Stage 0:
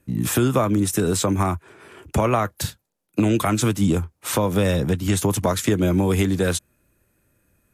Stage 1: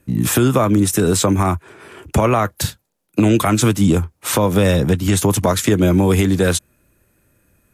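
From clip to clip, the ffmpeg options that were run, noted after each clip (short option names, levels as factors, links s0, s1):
-af "alimiter=level_in=2.99:limit=0.891:release=50:level=0:latency=1,volume=0.631"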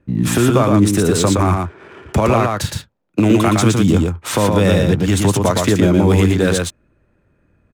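-af "adynamicsmooth=sensitivity=7:basefreq=2300,aecho=1:1:116:0.668"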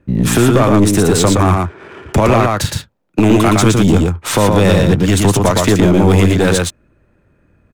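-af "aeval=exprs='(tanh(2.82*val(0)+0.35)-tanh(0.35))/2.82':c=same,volume=1.88"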